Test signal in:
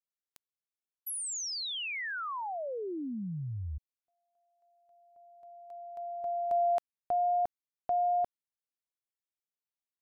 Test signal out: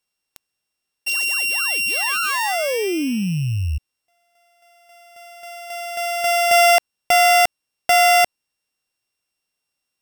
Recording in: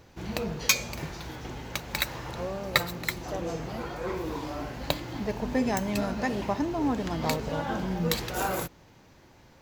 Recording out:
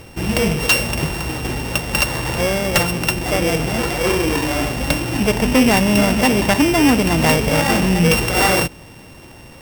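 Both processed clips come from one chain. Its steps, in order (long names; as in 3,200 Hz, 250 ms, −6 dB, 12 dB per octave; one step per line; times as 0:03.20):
samples sorted by size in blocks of 16 samples
sine wavefolder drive 15 dB, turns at −4 dBFS
level −3.5 dB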